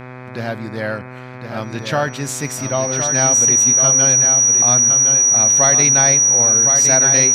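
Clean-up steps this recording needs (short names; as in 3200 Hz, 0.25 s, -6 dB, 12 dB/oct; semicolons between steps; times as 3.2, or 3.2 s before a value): de-hum 126.6 Hz, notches 20; notch 5800 Hz, Q 30; inverse comb 1.062 s -7 dB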